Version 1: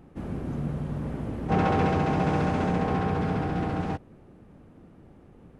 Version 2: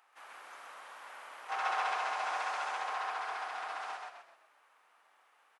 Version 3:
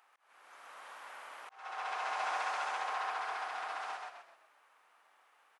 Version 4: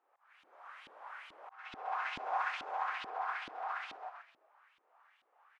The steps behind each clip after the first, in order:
high-pass 980 Hz 24 dB/octave; on a send: frequency-shifting echo 128 ms, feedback 37%, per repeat -34 Hz, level -3 dB; on the sum: dynamic bell 2.3 kHz, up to -4 dB, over -46 dBFS, Q 0.79
slow attack 725 ms
LFO band-pass saw up 2.3 Hz 280–3600 Hz; trim +5.5 dB

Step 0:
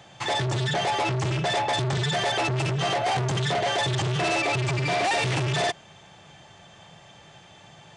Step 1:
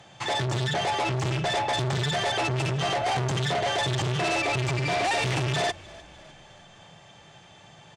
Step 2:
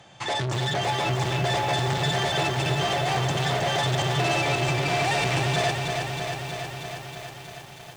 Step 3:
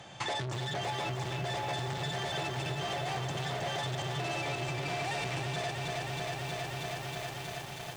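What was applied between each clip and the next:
Chebyshev shaper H 2 -20 dB, 3 -21 dB, 5 -32 dB, 8 -40 dB, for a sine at -15.5 dBFS; frequency-shifting echo 303 ms, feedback 55%, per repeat -35 Hz, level -22 dB
bit-crushed delay 318 ms, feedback 80%, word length 8-bit, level -5.5 dB
compression 5:1, threshold -35 dBFS, peak gain reduction 13.5 dB; trim +1.5 dB

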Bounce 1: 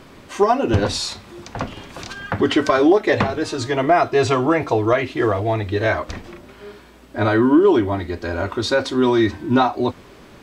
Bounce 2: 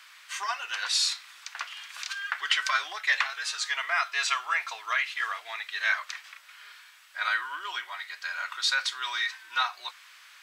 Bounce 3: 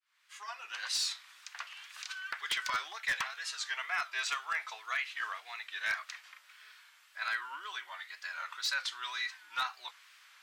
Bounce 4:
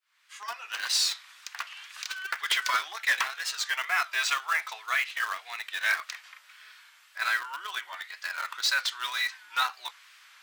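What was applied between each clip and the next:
high-pass 1.4 kHz 24 dB/octave
fade-in on the opening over 0.89 s; wow and flutter 94 cents; wavefolder -17.5 dBFS; trim -7 dB
in parallel at -8.5 dB: bit crusher 6-bit; on the sum: high-pass 390 Hz 12 dB/octave; trim +4.5 dB

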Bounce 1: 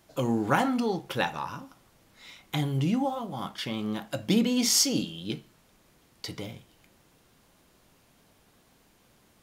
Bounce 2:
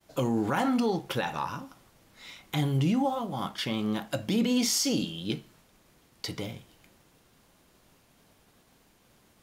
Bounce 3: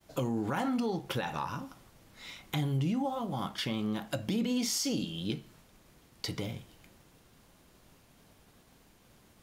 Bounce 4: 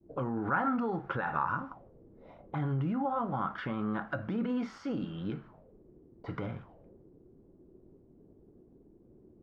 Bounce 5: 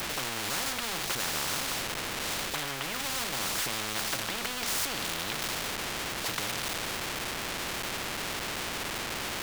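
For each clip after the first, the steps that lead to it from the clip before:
expander -59 dBFS; peak limiter -20 dBFS, peak gain reduction 9 dB; trim +2 dB
bass shelf 170 Hz +4.5 dB; compression 2:1, threshold -33 dBFS, peak gain reduction 7 dB
peak limiter -25.5 dBFS, peak gain reduction 6 dB; touch-sensitive low-pass 320–1400 Hz up, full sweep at -37 dBFS
jump at every zero crossing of -43.5 dBFS; spectrum-flattening compressor 10:1

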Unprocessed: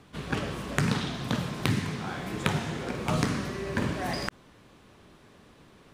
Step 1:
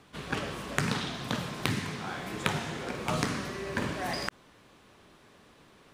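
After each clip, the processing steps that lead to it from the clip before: bass shelf 330 Hz -6.5 dB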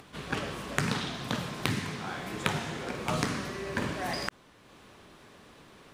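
upward compressor, threshold -47 dBFS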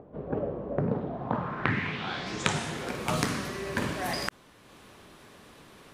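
low-pass sweep 560 Hz -> 13 kHz, 1.06–2.80 s; trim +1.5 dB

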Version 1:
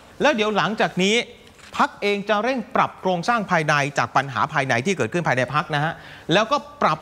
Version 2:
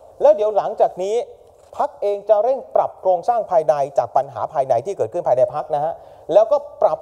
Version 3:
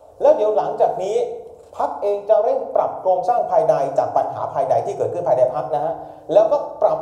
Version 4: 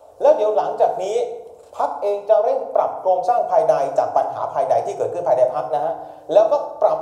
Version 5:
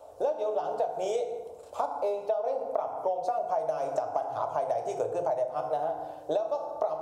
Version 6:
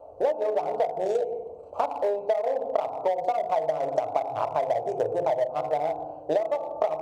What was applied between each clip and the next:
FFT filter 110 Hz 0 dB, 200 Hz -16 dB, 620 Hz +15 dB, 1.8 kHz -21 dB, 10 kHz -2 dB; trim -4 dB
FDN reverb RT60 0.94 s, low-frequency decay 1.5×, high-frequency decay 0.55×, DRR 3 dB; trim -2 dB
bass shelf 320 Hz -9.5 dB; trim +2 dB
compression 10:1, threshold -22 dBFS, peak gain reduction 15 dB; trim -3.5 dB
local Wiener filter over 25 samples; trim +5 dB

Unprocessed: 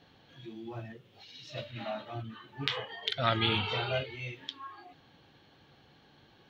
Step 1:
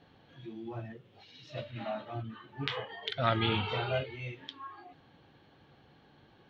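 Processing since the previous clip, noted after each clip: treble shelf 3.5 kHz -11.5 dB; trim +1 dB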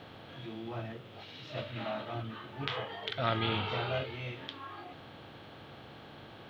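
spectral levelling over time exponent 0.6; word length cut 12-bit, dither none; trim -4 dB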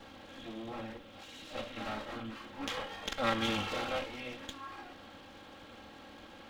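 comb filter that takes the minimum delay 3.7 ms

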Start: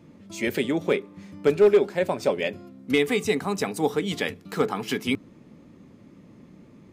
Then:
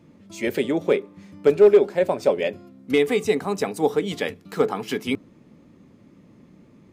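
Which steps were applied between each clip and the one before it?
dynamic bell 520 Hz, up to +6 dB, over -32 dBFS, Q 0.85; trim -1.5 dB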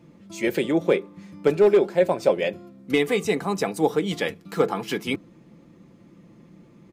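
comb 5.9 ms, depth 41%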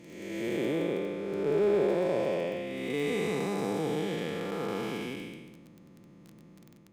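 spectral blur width 475 ms; crackle 14 per s -36 dBFS; trim -2 dB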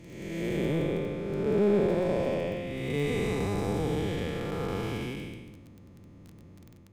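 octave divider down 1 oct, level +1 dB

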